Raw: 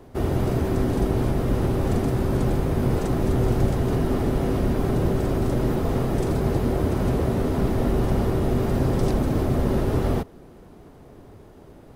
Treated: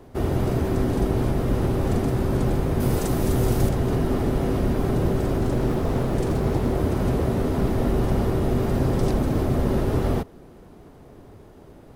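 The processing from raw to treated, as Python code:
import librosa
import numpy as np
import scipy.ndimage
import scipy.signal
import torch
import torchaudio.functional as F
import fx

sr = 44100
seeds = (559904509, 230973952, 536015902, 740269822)

y = fx.high_shelf(x, sr, hz=5100.0, db=11.5, at=(2.8, 3.69))
y = fx.doppler_dist(y, sr, depth_ms=0.41, at=(5.37, 6.75))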